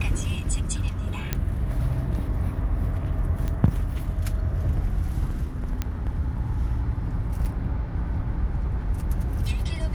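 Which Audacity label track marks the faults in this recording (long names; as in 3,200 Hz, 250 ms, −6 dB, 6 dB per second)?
1.330000	1.330000	click −10 dBFS
3.480000	3.480000	click −17 dBFS
5.820000	5.820000	click −13 dBFS
7.450000	7.450000	drop-out 4.2 ms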